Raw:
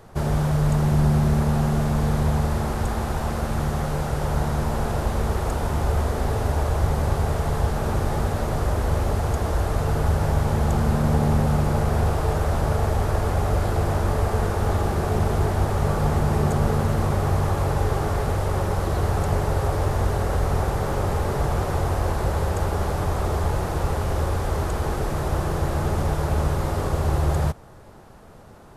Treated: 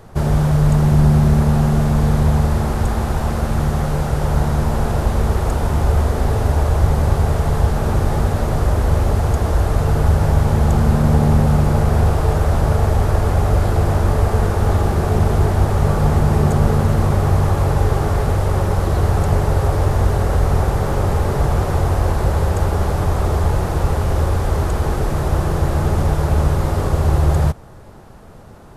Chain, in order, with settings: low shelf 240 Hz +4 dB; gain +3.5 dB

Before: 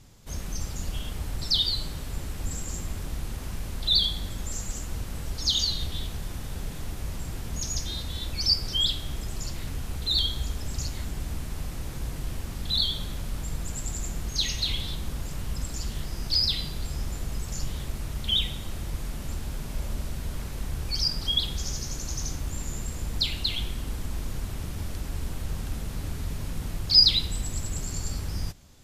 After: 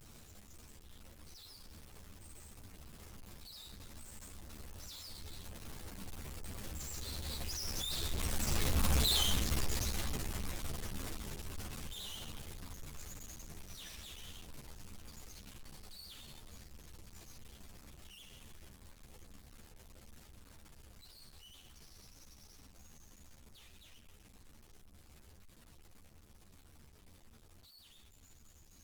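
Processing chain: infinite clipping; Doppler pass-by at 8.99, 37 m/s, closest 18 m; ensemble effect; gain +2.5 dB

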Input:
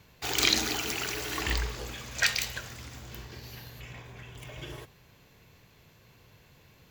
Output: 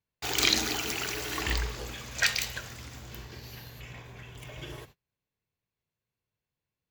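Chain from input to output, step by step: gate -51 dBFS, range -32 dB

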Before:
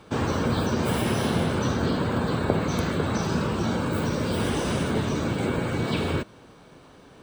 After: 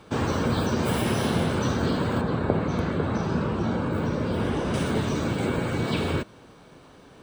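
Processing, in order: 2.21–4.74 LPF 1800 Hz 6 dB/oct

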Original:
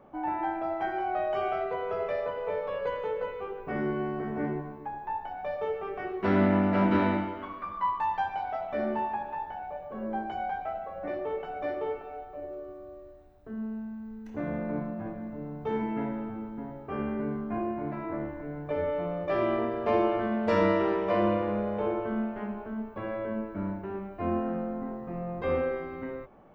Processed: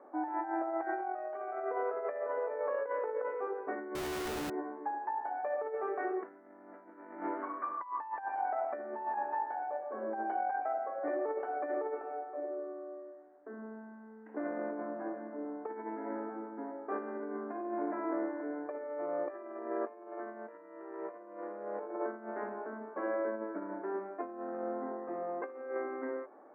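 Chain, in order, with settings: negative-ratio compressor -33 dBFS, ratio -0.5; elliptic band-pass 290–1800 Hz, stop band 40 dB; 3.95–4.5 Schmitt trigger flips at -49.5 dBFS; gain -2 dB

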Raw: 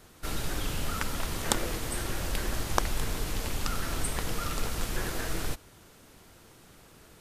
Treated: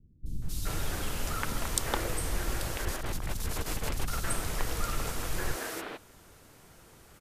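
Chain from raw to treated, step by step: 2.59–3.91 negative-ratio compressor -31 dBFS, ratio -0.5; three bands offset in time lows, highs, mids 0.26/0.42 s, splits 240/3600 Hz

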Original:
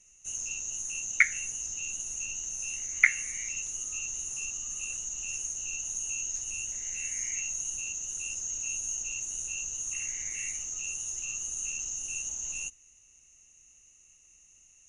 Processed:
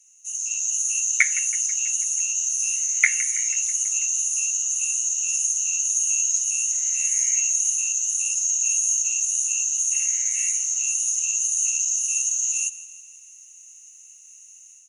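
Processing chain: HPF 61 Hz 12 dB/oct; pre-emphasis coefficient 0.97; AGC gain up to 8 dB; on a send: feedback echo 0.163 s, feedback 59%, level -17 dB; on the sum: gain +5.5 dB

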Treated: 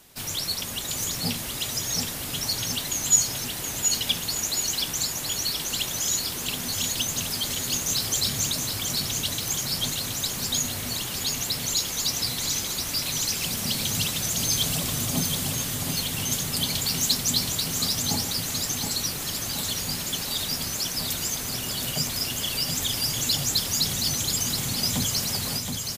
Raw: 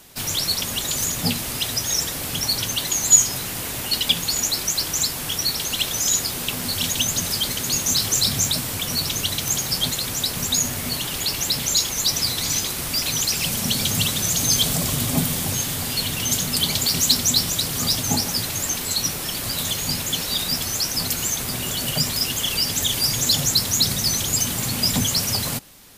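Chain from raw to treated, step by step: short-mantissa float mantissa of 8-bit; on a send: feedback echo 0.723 s, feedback 58%, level -5.5 dB; on the sum: gain -6 dB

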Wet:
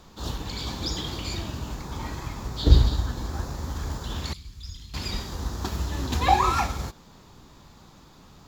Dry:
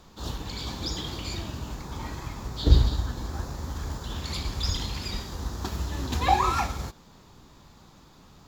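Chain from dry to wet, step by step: 4.33–4.94 passive tone stack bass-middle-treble 6-0-2; gain +2 dB

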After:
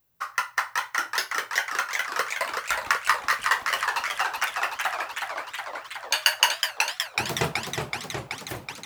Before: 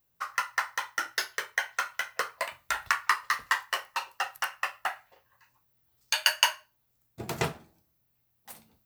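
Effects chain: warbling echo 0.372 s, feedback 74%, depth 165 cents, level -5 dB; gain +3 dB

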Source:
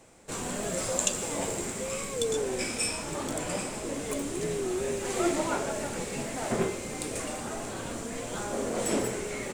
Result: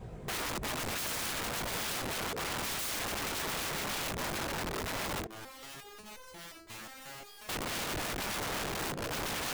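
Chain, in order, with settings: half-waves squared off; tilt -3.5 dB/oct; notches 50/100/150/200/250/300 Hz; whisperiser; notch comb 290 Hz; chorus 1.2 Hz, delay 17.5 ms, depth 6.9 ms; negative-ratio compressor -28 dBFS, ratio -0.5; wrapped overs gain 32 dB; stuck buffer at 7.27, times 8; 5.27–7.49 stepped resonator 5.6 Hz 110–510 Hz; gain +1 dB

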